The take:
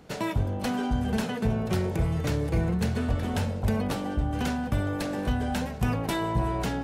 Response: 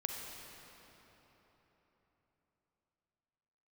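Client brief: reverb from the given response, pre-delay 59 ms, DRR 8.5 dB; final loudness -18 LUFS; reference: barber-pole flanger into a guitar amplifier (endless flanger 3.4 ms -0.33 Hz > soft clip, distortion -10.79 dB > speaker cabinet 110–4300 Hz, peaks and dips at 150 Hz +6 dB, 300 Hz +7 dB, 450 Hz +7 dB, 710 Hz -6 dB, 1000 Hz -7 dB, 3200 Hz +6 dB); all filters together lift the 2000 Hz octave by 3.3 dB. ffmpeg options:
-filter_complex "[0:a]equalizer=f=2k:t=o:g=4.5,asplit=2[a][b];[1:a]atrim=start_sample=2205,adelay=59[c];[b][c]afir=irnorm=-1:irlink=0,volume=-10dB[d];[a][d]amix=inputs=2:normalize=0,asplit=2[e][f];[f]adelay=3.4,afreqshift=-0.33[g];[e][g]amix=inputs=2:normalize=1,asoftclip=threshold=-28.5dB,highpass=110,equalizer=f=150:t=q:w=4:g=6,equalizer=f=300:t=q:w=4:g=7,equalizer=f=450:t=q:w=4:g=7,equalizer=f=710:t=q:w=4:g=-6,equalizer=f=1k:t=q:w=4:g=-7,equalizer=f=3.2k:t=q:w=4:g=6,lowpass=f=4.3k:w=0.5412,lowpass=f=4.3k:w=1.3066,volume=15dB"

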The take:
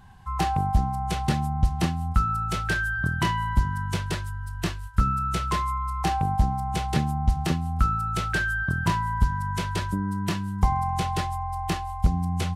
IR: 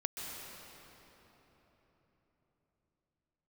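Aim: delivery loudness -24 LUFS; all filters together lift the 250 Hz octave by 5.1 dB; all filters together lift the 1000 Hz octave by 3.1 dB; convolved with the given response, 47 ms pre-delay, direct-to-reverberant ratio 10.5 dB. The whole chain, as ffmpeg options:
-filter_complex "[0:a]equalizer=f=250:t=o:g=8,equalizer=f=1k:t=o:g=3.5,asplit=2[a][b];[1:a]atrim=start_sample=2205,adelay=47[c];[b][c]afir=irnorm=-1:irlink=0,volume=-12.5dB[d];[a][d]amix=inputs=2:normalize=0,volume=-0.5dB"

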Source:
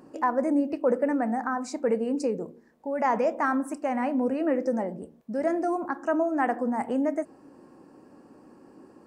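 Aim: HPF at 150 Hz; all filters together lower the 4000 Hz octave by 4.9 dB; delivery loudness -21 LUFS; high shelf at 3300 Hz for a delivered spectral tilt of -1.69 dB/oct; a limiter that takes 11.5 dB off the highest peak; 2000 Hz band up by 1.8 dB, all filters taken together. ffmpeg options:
-af "highpass=150,equalizer=f=2k:t=o:g=4.5,highshelf=f=3.3k:g=-6,equalizer=f=4k:t=o:g=-4,volume=11.5dB,alimiter=limit=-12.5dB:level=0:latency=1"

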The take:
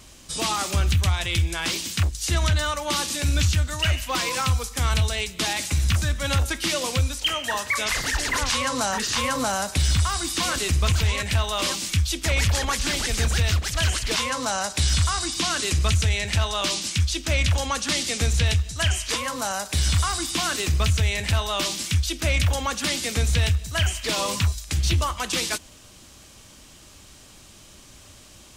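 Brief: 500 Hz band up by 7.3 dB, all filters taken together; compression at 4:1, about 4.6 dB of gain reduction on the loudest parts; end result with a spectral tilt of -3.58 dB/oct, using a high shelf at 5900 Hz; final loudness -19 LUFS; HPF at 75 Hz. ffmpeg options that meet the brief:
-af "highpass=75,equalizer=f=500:t=o:g=9,highshelf=f=5.9k:g=-5,acompressor=threshold=-23dB:ratio=4,volume=8dB"

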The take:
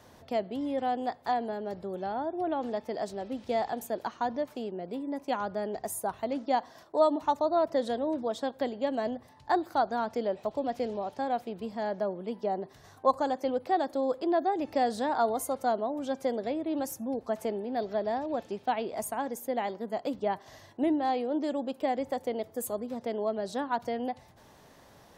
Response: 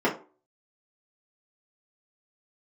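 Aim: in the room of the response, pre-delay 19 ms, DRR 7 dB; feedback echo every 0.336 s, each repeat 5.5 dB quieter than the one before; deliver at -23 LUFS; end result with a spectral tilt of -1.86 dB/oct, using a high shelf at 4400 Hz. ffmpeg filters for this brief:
-filter_complex "[0:a]highshelf=f=4.4k:g=-7.5,aecho=1:1:336|672|1008|1344|1680|2016|2352:0.531|0.281|0.149|0.079|0.0419|0.0222|0.0118,asplit=2[a][b];[1:a]atrim=start_sample=2205,adelay=19[c];[b][c]afir=irnorm=-1:irlink=0,volume=-22dB[d];[a][d]amix=inputs=2:normalize=0,volume=6dB"

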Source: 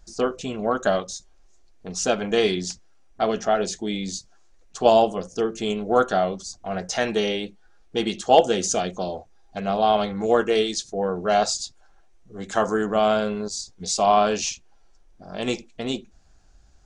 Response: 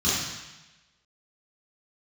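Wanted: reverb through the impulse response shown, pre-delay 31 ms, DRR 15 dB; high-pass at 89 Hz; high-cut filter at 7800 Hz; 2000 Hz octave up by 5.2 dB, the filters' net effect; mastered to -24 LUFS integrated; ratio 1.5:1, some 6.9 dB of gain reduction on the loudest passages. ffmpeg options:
-filter_complex "[0:a]highpass=89,lowpass=7.8k,equalizer=f=2k:t=o:g=7,acompressor=threshold=-29dB:ratio=1.5,asplit=2[a][b];[1:a]atrim=start_sample=2205,adelay=31[c];[b][c]afir=irnorm=-1:irlink=0,volume=-29dB[d];[a][d]amix=inputs=2:normalize=0,volume=3.5dB"

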